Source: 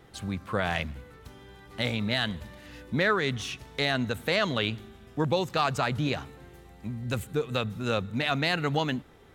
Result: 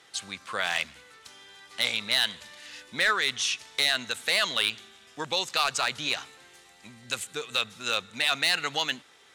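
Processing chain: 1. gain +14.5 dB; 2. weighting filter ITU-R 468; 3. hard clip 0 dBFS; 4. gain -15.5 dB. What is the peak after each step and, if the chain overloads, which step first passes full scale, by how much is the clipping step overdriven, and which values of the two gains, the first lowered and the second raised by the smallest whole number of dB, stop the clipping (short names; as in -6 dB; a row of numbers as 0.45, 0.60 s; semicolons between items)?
+1.5, +9.0, 0.0, -15.5 dBFS; step 1, 9.0 dB; step 1 +5.5 dB, step 4 -6.5 dB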